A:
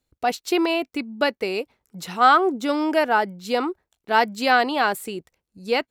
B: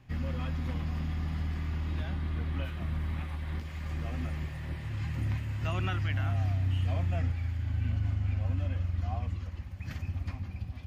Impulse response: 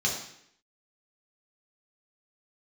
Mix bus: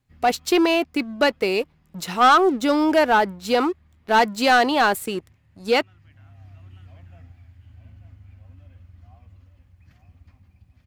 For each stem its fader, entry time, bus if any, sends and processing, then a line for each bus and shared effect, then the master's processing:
−3.5 dB, 0.00 s, no send, no echo send, leveller curve on the samples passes 2
−16.5 dB, 0.00 s, no send, echo send −9.5 dB, bit reduction 11 bits; automatic ducking −11 dB, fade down 1.05 s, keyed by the first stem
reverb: not used
echo: single-tap delay 891 ms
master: no processing

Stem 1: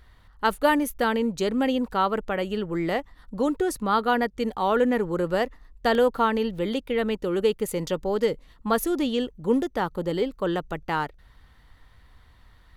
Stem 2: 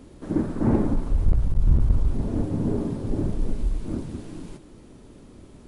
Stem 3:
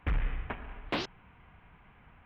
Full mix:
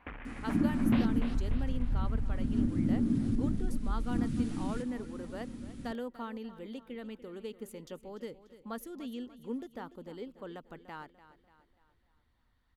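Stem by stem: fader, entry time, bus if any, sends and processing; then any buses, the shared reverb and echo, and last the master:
−18.0 dB, 0.00 s, no send, echo send −15 dB, harmonic and percussive parts rebalanced harmonic −3 dB
+0.5 dB, 0.25 s, no send, no echo send, flat-topped bell 640 Hz −13 dB; downward compressor 6 to 1, threshold −29 dBFS, peak gain reduction 15 dB
−0.5 dB, 0.00 s, no send, echo send −6.5 dB, brickwall limiter −29.5 dBFS, peak gain reduction 8 dB; bass and treble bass −13 dB, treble −12 dB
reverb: not used
echo: repeating echo 293 ms, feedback 47%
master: parametric band 240 Hz +9 dB 0.4 octaves

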